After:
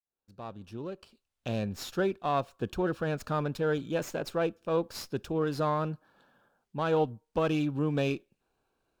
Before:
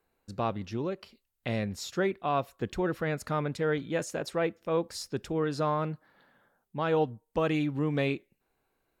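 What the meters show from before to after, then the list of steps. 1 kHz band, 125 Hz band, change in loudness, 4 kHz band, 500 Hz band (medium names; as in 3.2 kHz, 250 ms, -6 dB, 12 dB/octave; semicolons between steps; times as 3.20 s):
-0.5 dB, -0.5 dB, 0.0 dB, -1.0 dB, -0.5 dB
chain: fade-in on the opening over 1.67 s; Butterworth band-stop 2 kHz, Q 3.3; sliding maximum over 3 samples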